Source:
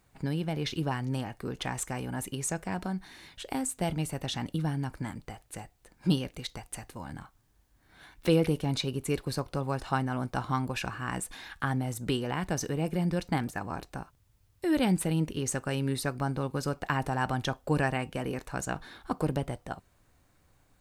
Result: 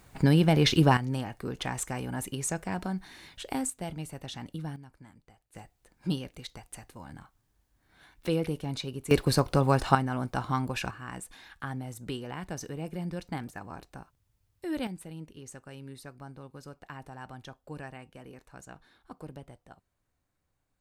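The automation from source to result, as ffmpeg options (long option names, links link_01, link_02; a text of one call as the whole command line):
ffmpeg -i in.wav -af "asetnsamples=nb_out_samples=441:pad=0,asendcmd='0.97 volume volume 0.5dB;3.7 volume volume -6.5dB;4.76 volume volume -16.5dB;5.55 volume volume -4.5dB;9.11 volume volume 8dB;9.95 volume volume 0.5dB;10.91 volume volume -6.5dB;14.87 volume volume -14.5dB',volume=10dB" out.wav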